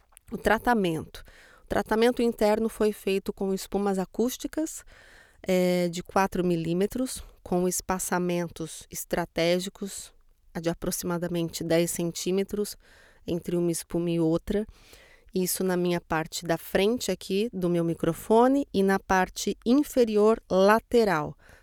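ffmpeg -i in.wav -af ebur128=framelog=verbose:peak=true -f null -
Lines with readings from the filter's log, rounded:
Integrated loudness:
  I:         -26.6 LUFS
  Threshold: -37.1 LUFS
Loudness range:
  LRA:         5.5 LU
  Threshold: -47.5 LUFS
  LRA low:   -29.7 LUFS
  LRA high:  -24.2 LUFS
True peak:
  Peak:       -7.2 dBFS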